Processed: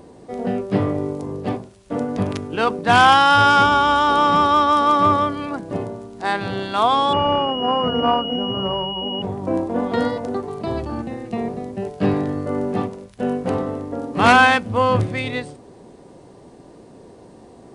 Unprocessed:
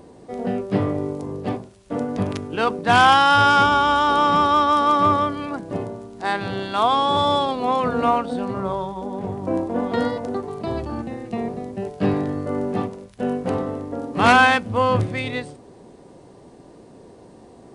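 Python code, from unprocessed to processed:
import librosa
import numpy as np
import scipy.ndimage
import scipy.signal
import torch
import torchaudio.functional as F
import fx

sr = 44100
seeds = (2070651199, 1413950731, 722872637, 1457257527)

y = fx.pwm(x, sr, carrier_hz=2900.0, at=(7.13, 9.22))
y = F.gain(torch.from_numpy(y), 1.5).numpy()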